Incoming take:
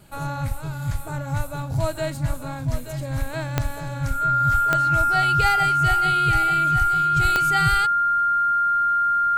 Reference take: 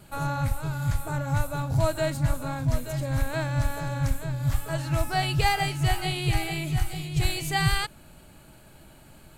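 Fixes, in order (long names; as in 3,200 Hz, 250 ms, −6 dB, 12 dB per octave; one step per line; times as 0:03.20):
click removal
notch filter 1,400 Hz, Q 30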